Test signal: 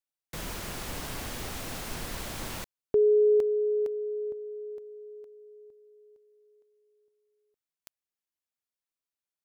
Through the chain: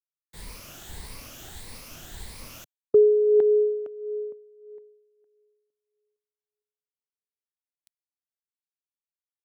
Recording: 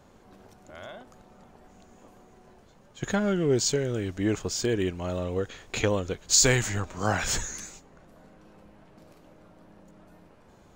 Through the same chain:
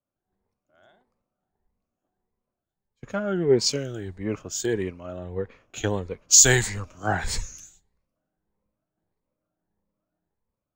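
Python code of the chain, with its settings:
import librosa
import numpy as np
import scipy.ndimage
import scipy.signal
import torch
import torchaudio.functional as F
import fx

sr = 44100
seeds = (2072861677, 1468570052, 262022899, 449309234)

y = fx.spec_ripple(x, sr, per_octave=0.91, drift_hz=1.6, depth_db=9)
y = fx.band_widen(y, sr, depth_pct=100)
y = F.gain(torch.from_numpy(y), -5.0).numpy()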